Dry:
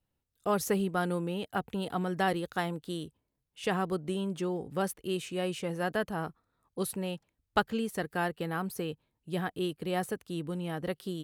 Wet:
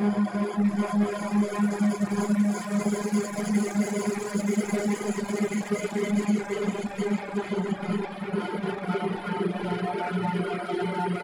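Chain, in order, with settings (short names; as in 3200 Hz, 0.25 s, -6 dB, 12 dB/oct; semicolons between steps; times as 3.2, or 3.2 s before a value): moving spectral ripple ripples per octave 1.8, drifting -0.43 Hz, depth 21 dB; LPF 10000 Hz 24 dB/oct; high shelf 7900 Hz -4 dB; comb 5.3 ms, depth 67%; delay with a stepping band-pass 0.193 s, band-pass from 560 Hz, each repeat 1.4 oct, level -3 dB; Paulstretch 18×, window 0.50 s, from 0.42; soft clip -29 dBFS, distortion -7 dB; reverb RT60 0.50 s, pre-delay 3 ms, DRR 0 dB; reverb removal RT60 1.5 s; gain +1.5 dB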